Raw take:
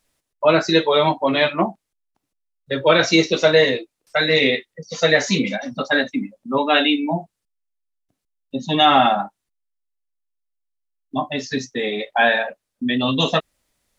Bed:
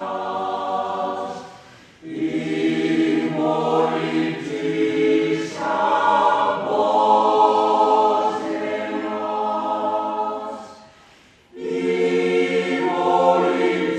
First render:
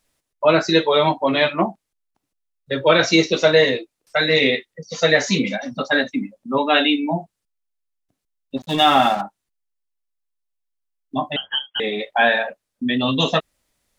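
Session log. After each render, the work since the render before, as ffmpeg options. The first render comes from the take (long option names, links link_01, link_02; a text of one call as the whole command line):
ffmpeg -i in.wav -filter_complex "[0:a]asplit=3[link_01][link_02][link_03];[link_01]afade=type=out:start_time=8.56:duration=0.02[link_04];[link_02]aeval=exprs='sgn(val(0))*max(abs(val(0))-0.0251,0)':channel_layout=same,afade=type=in:start_time=8.56:duration=0.02,afade=type=out:start_time=9.2:duration=0.02[link_05];[link_03]afade=type=in:start_time=9.2:duration=0.02[link_06];[link_04][link_05][link_06]amix=inputs=3:normalize=0,asettb=1/sr,asplit=3[link_07][link_08][link_09];[link_07]atrim=end=11.364[link_10];[link_08]atrim=start=11.36:end=11.8,asetpts=PTS-STARTPTS,afade=type=in:duration=0.004:curve=qsin,afade=type=out:start_time=0.436:duration=0.004:curve=qsin,lowpass=frequency=2900:width_type=q:width=0.5098,lowpass=frequency=2900:width_type=q:width=0.6013,lowpass=frequency=2900:width_type=q:width=0.9,lowpass=frequency=2900:width_type=q:width=2.563,afreqshift=-3400[link_11];[link_09]atrim=start=11.796[link_12];[link_10][link_11]acrossfade=duration=0.004:curve1=hsin:curve2=qsin[link_13];[link_13][link_12]acrossfade=duration=0.004:curve1=qsin:curve2=hsin" out.wav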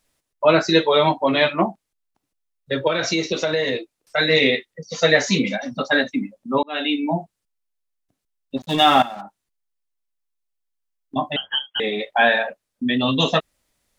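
ffmpeg -i in.wav -filter_complex "[0:a]asettb=1/sr,asplit=3[link_01][link_02][link_03];[link_01]atrim=end=2.874[link_04];[link_02]atrim=start=2.87:end=4.18,asetpts=PTS-STARTPTS,afade=type=in:duration=0.004:curve=qsin,afade=type=out:start_time=1.306:duration=0.004:curve=qsin,acompressor=threshold=-17dB:ratio=6:attack=3.2:release=140:knee=1:detection=peak[link_05];[link_03]atrim=start=4.176[link_06];[link_04][link_05]acrossfade=duration=0.004:curve1=hsin:curve2=qsin[link_07];[link_07][link_06]acrossfade=duration=0.004:curve1=qsin:curve2=hsin,asettb=1/sr,asplit=3[link_08][link_09][link_10];[link_08]atrim=end=9.024[link_11];[link_09]atrim=start=9.02:end=11.16,asetpts=PTS-STARTPTS,afade=type=in:duration=0.004:curve=qsin,afade=type=out:start_time=2.136:duration=0.004:curve=qsin,acompressor=threshold=-31dB:ratio=4:attack=3.2:release=140:knee=1:detection=peak[link_12];[link_10]atrim=start=11.156[link_13];[link_11][link_12]acrossfade=duration=0.004:curve1=hsin:curve2=qsin[link_14];[link_14][link_13]acrossfade=duration=0.004:curve1=qsin:curve2=hsin,asplit=2[link_15][link_16];[link_15]atrim=end=6.63,asetpts=PTS-STARTPTS,afade=type=out:start_time=6.626:duration=0.004:curve=hsin[link_17];[link_16]atrim=start=6.63,asetpts=PTS-STARTPTS,afade=type=in:duration=0.43[link_18];[link_17][link_18]concat=n=2:v=0:a=1" out.wav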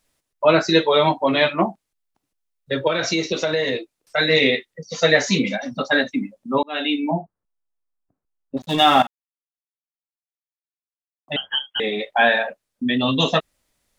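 ffmpeg -i in.wav -filter_complex "[0:a]asettb=1/sr,asplit=3[link_01][link_02][link_03];[link_01]atrim=end=7.114[link_04];[link_02]atrim=start=7.11:end=8.57,asetpts=PTS-STARTPTS,afade=type=in:duration=0.004:curve=qsin,afade=type=out:start_time=1.456:duration=0.004:curve=qsin,lowpass=frequency=1400:width=0.5412,lowpass=frequency=1400:width=1.3066[link_05];[link_03]atrim=start=8.566[link_06];[link_04][link_05]acrossfade=duration=0.004:curve1=hsin:curve2=qsin[link_07];[link_07][link_06]acrossfade=duration=0.004:curve1=qsin:curve2=hsin,asplit=3[link_08][link_09][link_10];[link_08]atrim=end=9.07,asetpts=PTS-STARTPTS,afade=type=out:start_time=9.066:duration=0.004:curve=hsin[link_11];[link_09]atrim=start=9.07:end=11.28,asetpts=PTS-STARTPTS,volume=0[link_12];[link_10]atrim=start=11.28,asetpts=PTS-STARTPTS,afade=type=in:duration=0.004:curve=hsin[link_13];[link_11][link_12][link_13]concat=n=3:v=0:a=1" out.wav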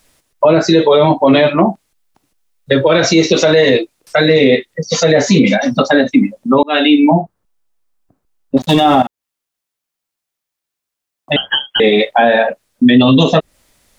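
ffmpeg -i in.wav -filter_complex "[0:a]acrossover=split=720[link_01][link_02];[link_02]acompressor=threshold=-28dB:ratio=6[link_03];[link_01][link_03]amix=inputs=2:normalize=0,alimiter=level_in=15dB:limit=-1dB:release=50:level=0:latency=1" out.wav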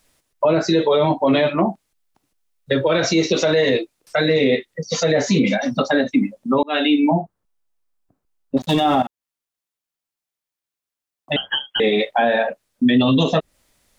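ffmpeg -i in.wav -af "volume=-7dB" out.wav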